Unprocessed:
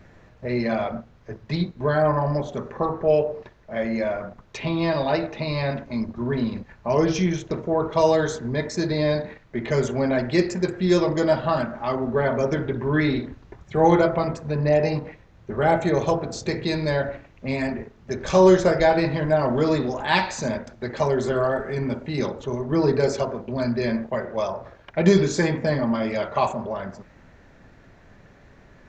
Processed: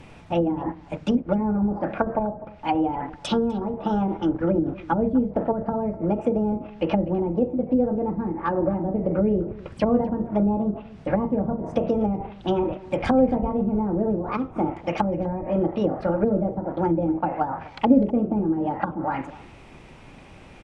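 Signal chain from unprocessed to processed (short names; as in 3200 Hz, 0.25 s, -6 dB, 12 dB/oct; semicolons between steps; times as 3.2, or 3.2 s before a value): wide varispeed 1.4×; treble ducked by the level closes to 310 Hz, closed at -19.5 dBFS; outdoor echo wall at 43 m, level -19 dB; gain +4.5 dB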